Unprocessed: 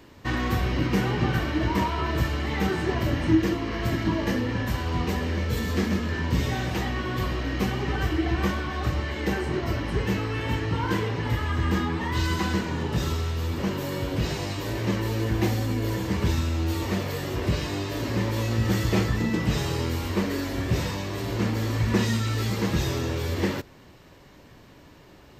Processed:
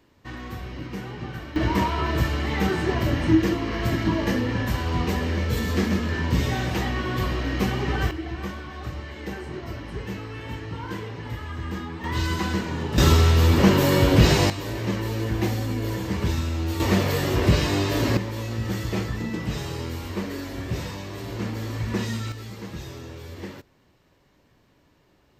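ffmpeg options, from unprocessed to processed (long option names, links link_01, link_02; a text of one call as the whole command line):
ffmpeg -i in.wav -af "asetnsamples=nb_out_samples=441:pad=0,asendcmd='1.56 volume volume 2dB;8.11 volume volume -7dB;12.04 volume volume 0dB;12.98 volume volume 11dB;14.5 volume volume -0.5dB;16.8 volume volume 6.5dB;18.17 volume volume -4dB;22.32 volume volume -11dB',volume=-10dB" out.wav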